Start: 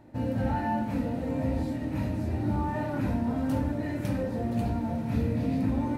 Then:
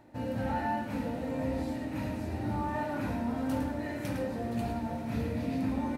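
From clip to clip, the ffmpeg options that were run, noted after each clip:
ffmpeg -i in.wav -af "lowshelf=frequency=380:gain=-8,areverse,acompressor=mode=upward:threshold=-39dB:ratio=2.5,areverse,aecho=1:1:107:0.422" out.wav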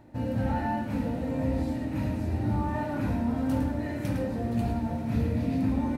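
ffmpeg -i in.wav -af "lowshelf=frequency=250:gain=9" out.wav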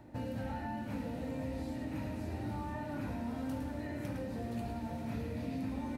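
ffmpeg -i in.wav -filter_complex "[0:a]acrossover=split=310|2100[link_01][link_02][link_03];[link_01]acompressor=threshold=-40dB:ratio=4[link_04];[link_02]acompressor=threshold=-42dB:ratio=4[link_05];[link_03]acompressor=threshold=-56dB:ratio=4[link_06];[link_04][link_05][link_06]amix=inputs=3:normalize=0,volume=-1dB" out.wav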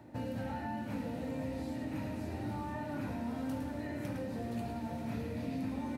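ffmpeg -i in.wav -af "highpass=84,volume=1dB" out.wav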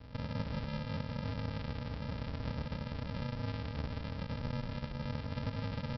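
ffmpeg -i in.wav -af "alimiter=level_in=8dB:limit=-24dB:level=0:latency=1:release=473,volume=-8dB,aresample=11025,acrusher=samples=30:mix=1:aa=0.000001,aresample=44100,aecho=1:1:158:0.355,volume=2.5dB" out.wav

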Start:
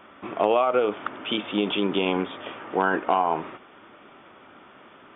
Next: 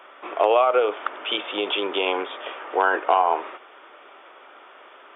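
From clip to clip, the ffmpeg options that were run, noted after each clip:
ffmpeg -i in.wav -af "highpass=frequency=410:width=0.5412,highpass=frequency=410:width=1.3066,volume=3.5dB" out.wav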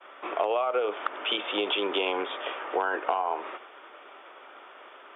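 ffmpeg -i in.wav -filter_complex "[0:a]agate=range=-33dB:threshold=-45dB:ratio=3:detection=peak,acrossover=split=180[link_01][link_02];[link_02]acompressor=threshold=-24dB:ratio=5[link_03];[link_01][link_03]amix=inputs=2:normalize=0" out.wav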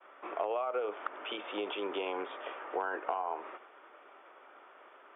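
ffmpeg -i in.wav -af "lowpass=2300,volume=-7dB" out.wav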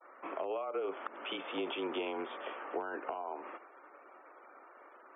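ffmpeg -i in.wav -filter_complex "[0:a]acrossover=split=490|3000[link_01][link_02][link_03];[link_02]acompressor=threshold=-38dB:ratio=6[link_04];[link_01][link_04][link_03]amix=inputs=3:normalize=0,afftfilt=real='re*gte(hypot(re,im),0.00141)':imag='im*gte(hypot(re,im),0.00141)':win_size=1024:overlap=0.75,afreqshift=-29" out.wav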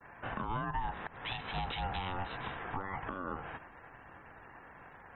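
ffmpeg -i in.wav -af "alimiter=level_in=6dB:limit=-24dB:level=0:latency=1:release=273,volume=-6dB,aeval=exprs='val(0)*sin(2*PI*440*n/s)':channel_layout=same,volume=6dB" out.wav

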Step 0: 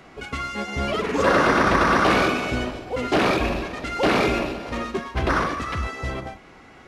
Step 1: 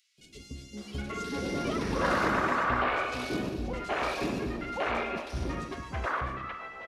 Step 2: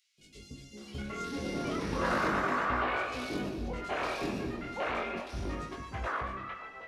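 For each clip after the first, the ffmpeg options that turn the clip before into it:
ffmpeg -i in.wav -filter_complex "[0:a]acrossover=split=430|3300[link_01][link_02][link_03];[link_01]adelay=180[link_04];[link_02]adelay=770[link_05];[link_04][link_05][link_03]amix=inputs=3:normalize=0,volume=-8dB" out.wav
ffmpeg -i in.wav -af "flanger=delay=19:depth=5.7:speed=0.34" out.wav

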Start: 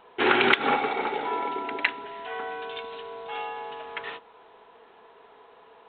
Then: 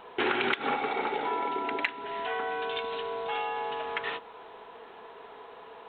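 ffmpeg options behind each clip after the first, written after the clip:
ffmpeg -i in.wav -af "acompressor=threshold=-35dB:ratio=3,volume=5.5dB" out.wav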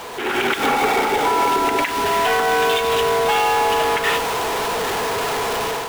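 ffmpeg -i in.wav -af "aeval=exprs='val(0)+0.5*0.0376*sgn(val(0))':channel_layout=same,alimiter=limit=-21dB:level=0:latency=1:release=127,dynaudnorm=framelen=120:gausssize=5:maxgain=11dB" out.wav

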